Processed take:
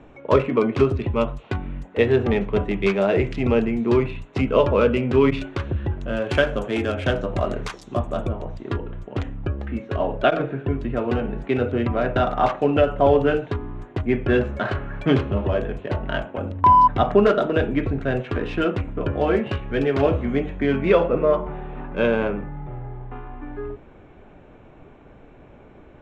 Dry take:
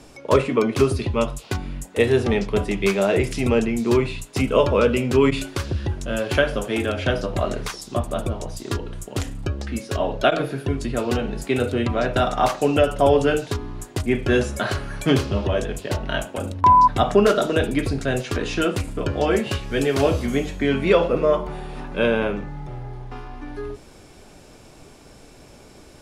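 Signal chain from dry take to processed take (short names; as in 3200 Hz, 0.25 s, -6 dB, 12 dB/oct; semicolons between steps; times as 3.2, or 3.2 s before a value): Wiener smoothing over 9 samples; LPF 3800 Hz 12 dB/oct, from 6.22 s 7500 Hz, from 8.32 s 3000 Hz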